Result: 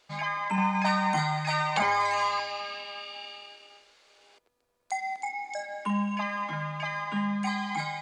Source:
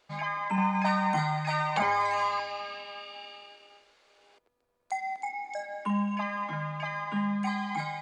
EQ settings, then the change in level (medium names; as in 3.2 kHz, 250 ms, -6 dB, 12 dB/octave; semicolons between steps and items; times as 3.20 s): peaking EQ 6.9 kHz +6.5 dB 2.8 oct; 0.0 dB